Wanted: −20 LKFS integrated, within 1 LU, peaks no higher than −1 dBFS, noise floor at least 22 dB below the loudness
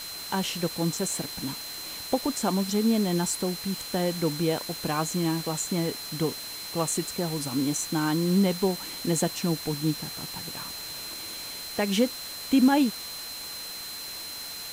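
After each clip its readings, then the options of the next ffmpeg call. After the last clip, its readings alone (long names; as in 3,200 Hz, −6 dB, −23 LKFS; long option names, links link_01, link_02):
interfering tone 4,100 Hz; level of the tone −38 dBFS; background noise floor −38 dBFS; target noise floor −50 dBFS; integrated loudness −28.0 LKFS; sample peak −11.5 dBFS; target loudness −20.0 LKFS
→ -af "bandreject=frequency=4100:width=30"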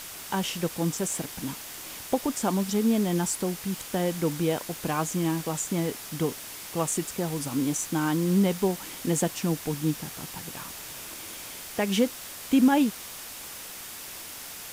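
interfering tone none found; background noise floor −41 dBFS; target noise floor −51 dBFS
→ -af "afftdn=noise_reduction=10:noise_floor=-41"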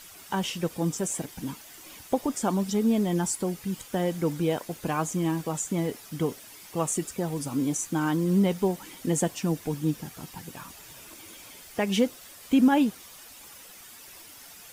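background noise floor −48 dBFS; target noise floor −50 dBFS
→ -af "afftdn=noise_reduction=6:noise_floor=-48"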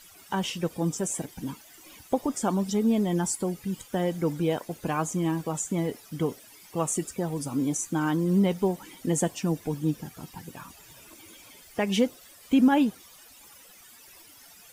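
background noise floor −52 dBFS; integrated loudness −28.0 LKFS; sample peak −12.0 dBFS; target loudness −20.0 LKFS
→ -af "volume=8dB"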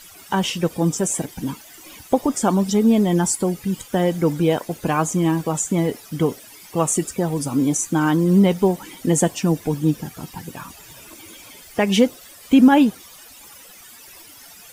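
integrated loudness −20.0 LKFS; sample peak −4.0 dBFS; background noise floor −44 dBFS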